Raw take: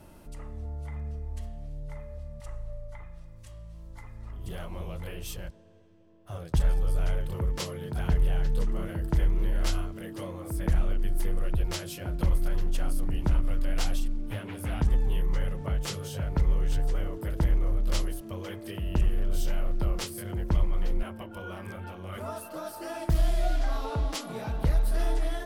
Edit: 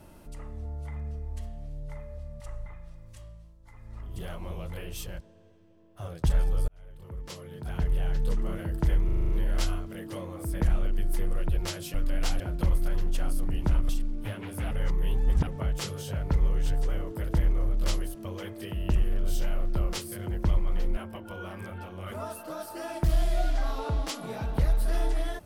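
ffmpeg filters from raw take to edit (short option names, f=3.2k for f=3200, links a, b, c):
-filter_complex "[0:a]asplit=16[a][b][c][d][e][f][g][h][i][j][k][l][m][n][o][p];[a]atrim=end=2.662[q];[b]atrim=start=2.958:end=3.86,asetpts=PTS-STARTPTS,afade=t=out:st=0.552:d=0.35:silence=0.266073[r];[c]atrim=start=3.86:end=3.92,asetpts=PTS-STARTPTS,volume=-11.5dB[s];[d]atrim=start=3.92:end=6.98,asetpts=PTS-STARTPTS,afade=t=in:d=0.35:silence=0.266073,afade=t=out:st=3.056:d=0.004:c=hsin[t];[e]atrim=start=6.98:end=9.392,asetpts=PTS-STARTPTS,afade=t=in:d=1.66[u];[f]atrim=start=9.348:end=9.392[v];[g]atrim=start=9.348:end=9.392[w];[h]atrim=start=9.348:end=9.392[x];[i]atrim=start=9.348:end=9.392[y];[j]atrim=start=9.348:end=9.392[z];[k]atrim=start=9.348:end=12.002[aa];[l]atrim=start=13.488:end=13.952[ab];[m]atrim=start=11.998:end=13.492[ac];[n]atrim=start=13.948:end=14.772[ad];[o]atrim=start=14.768:end=15.532,asetpts=PTS-STARTPTS,areverse[ae];[p]atrim=start=15.528[af];[r][s][t][u]concat=n=4:v=0:a=1[ag];[q][ag]acrossfade=d=0.004:c1=hsin:c2=hsin[ah];[ah][v]acrossfade=d=0.004:c1=hsin:c2=hsin[ai];[ai][w]acrossfade=d=0.004:c1=hsin:c2=hsin[aj];[aj][x]acrossfade=d=0.004:c1=hsin:c2=hsin[ak];[ak][y]acrossfade=d=0.004:c1=hsin:c2=hsin[al];[al][z]acrossfade=d=0.004:c1=hsin:c2=hsin[am];[am][aa]acrossfade=d=0.004:c1=hsin:c2=hsin[an];[an][ab]acrossfade=d=0.004:c1=hsin:c2=hsin[ao];[ao][ac]acrossfade=d=0.004:c1=hsin:c2=hsin[ap];[ap][ad]acrossfade=d=0.004:c1=hsin:c2=hsin[aq];[aq][ae]acrossfade=d=0.004:c1=hsin:c2=hsin[ar];[ar][af]acrossfade=d=0.004:c1=hsin:c2=hsin"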